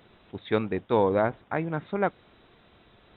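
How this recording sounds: noise floor -60 dBFS; spectral tilt -3.5 dB/oct

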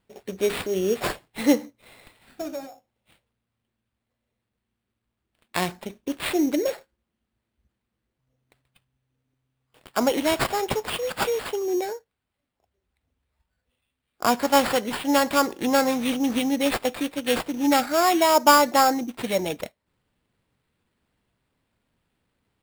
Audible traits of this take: aliases and images of a low sample rate 6100 Hz, jitter 0%

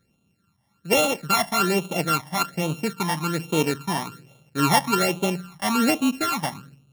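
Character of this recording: a buzz of ramps at a fixed pitch in blocks of 32 samples; phasing stages 12, 1.2 Hz, lowest notch 430–1700 Hz

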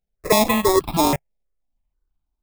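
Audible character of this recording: aliases and images of a low sample rate 1500 Hz, jitter 0%; notches that jump at a steady rate 6.2 Hz 310–1900 Hz

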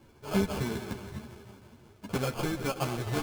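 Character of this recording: aliases and images of a low sample rate 1900 Hz, jitter 0%; a shimmering, thickened sound

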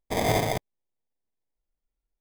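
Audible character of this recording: aliases and images of a low sample rate 1400 Hz, jitter 0%

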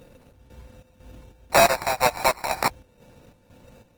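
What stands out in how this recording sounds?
a buzz of ramps at a fixed pitch in blocks of 8 samples; chopped level 2 Hz, depth 60%, duty 65%; aliases and images of a low sample rate 3200 Hz, jitter 0%; Opus

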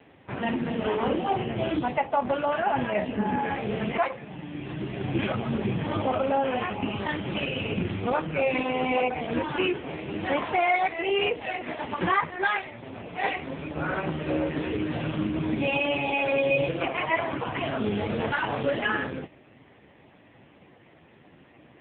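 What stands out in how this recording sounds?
a quantiser's noise floor 10-bit, dither none; AMR-NB

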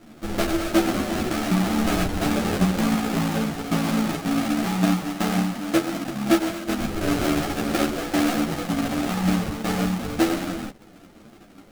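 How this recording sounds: aliases and images of a low sample rate 1000 Hz, jitter 20%; a shimmering, thickened sound

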